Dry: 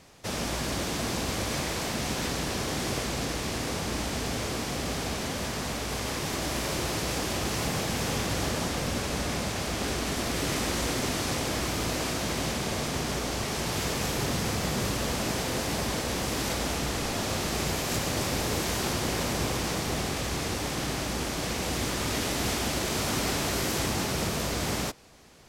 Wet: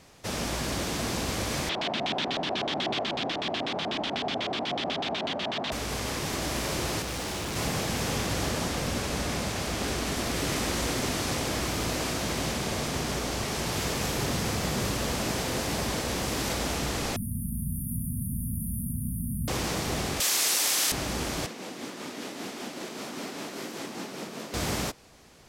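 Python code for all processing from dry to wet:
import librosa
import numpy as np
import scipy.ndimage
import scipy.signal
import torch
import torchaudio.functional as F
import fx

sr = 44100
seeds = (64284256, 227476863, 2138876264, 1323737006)

y = fx.chain(x, sr, fx.highpass(hz=200.0, slope=12),
    fx.peak_eq(hz=490.0, db=-8.0, octaves=0.3),
    fx.filter_lfo_lowpass(shape='square', hz=8.1, low_hz=710.0, high_hz=3400.0, q=3.7), at=(1.69, 5.72))
y = fx.chain(y, sr, fx.room_flutter(wall_m=11.0, rt60_s=0.97),
    fx.clip_hard(threshold_db=-31.0),
    fx.doppler_dist(depth_ms=0.29), at=(7.02, 7.56))
y = fx.chain(y, sr, fx.brickwall_bandstop(low_hz=260.0, high_hz=9000.0),
    fx.env_flatten(amount_pct=50), at=(17.16, 19.48))
y = fx.chain(y, sr, fx.highpass(hz=230.0, slope=12),
    fx.tilt_eq(slope=4.5), at=(20.2, 20.92))
y = fx.chain(y, sr, fx.ladder_highpass(hz=180.0, resonance_pct=30),
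    fx.high_shelf(hz=6800.0, db=-6.5),
    fx.tremolo(hz=5.1, depth=0.36), at=(21.46, 24.54))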